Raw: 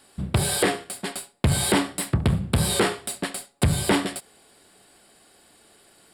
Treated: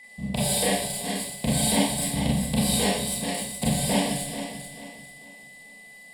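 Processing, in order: regenerating reverse delay 0.22 s, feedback 59%, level -7 dB; whine 2000 Hz -35 dBFS; fixed phaser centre 360 Hz, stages 6; Schroeder reverb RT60 0.43 s, combs from 29 ms, DRR -4.5 dB; gain -4.5 dB

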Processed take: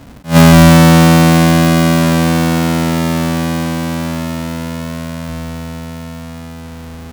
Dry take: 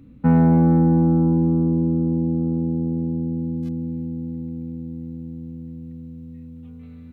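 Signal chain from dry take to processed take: half-waves squared off; attack slew limiter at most 250 dB/s; gain +6 dB

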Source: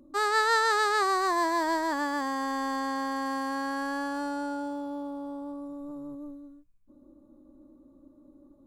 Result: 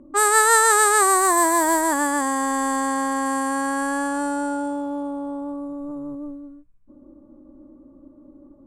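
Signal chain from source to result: resonant high shelf 6500 Hz +12 dB, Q 3; low-pass opened by the level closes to 1800 Hz, open at -23.5 dBFS; gain +8 dB

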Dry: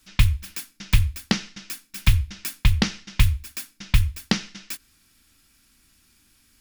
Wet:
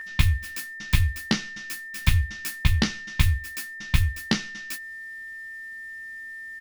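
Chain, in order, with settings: whine 1800 Hz -29 dBFS; early reflections 13 ms -3.5 dB, 33 ms -17.5 dB; gain -3 dB

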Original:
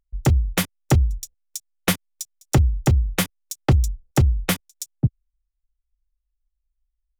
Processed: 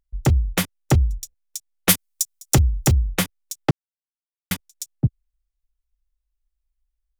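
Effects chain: 1.89–2.97 high shelf 3800 Hz +12 dB; 3.71–4.51 mute

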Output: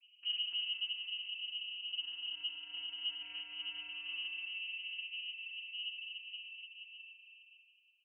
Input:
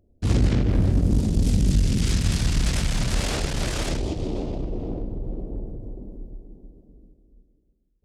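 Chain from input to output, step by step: compressor 4:1, threshold -38 dBFS, peak gain reduction 20 dB; soft clip -36 dBFS, distortion -13 dB; resonator 340 Hz, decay 0.66 s, mix 80%; vocoder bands 16, square 108 Hz; air absorption 140 m; bouncing-ball echo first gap 0.29 s, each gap 0.65×, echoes 5; inverted band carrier 3000 Hz; gain +17 dB

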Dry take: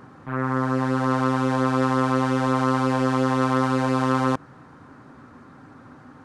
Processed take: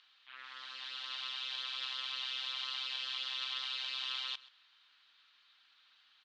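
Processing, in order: Butterworth band-pass 3500 Hz, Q 2.5; on a send: echo 0.129 s -19.5 dB; on the sum: gain +6.5 dB

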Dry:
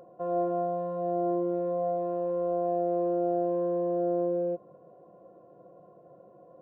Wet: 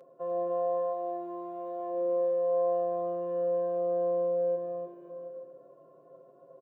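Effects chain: HPF 230 Hz 12 dB/oct; bell 750 Hz -9 dB 0.21 oct; comb 7.5 ms, depth 86%; on a send: bouncing-ball echo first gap 0.3 s, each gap 0.8×, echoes 5; on the sum: gain -5 dB

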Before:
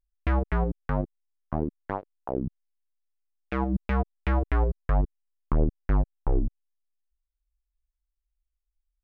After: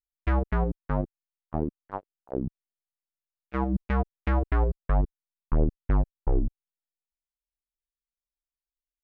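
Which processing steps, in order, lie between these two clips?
gate -29 dBFS, range -21 dB

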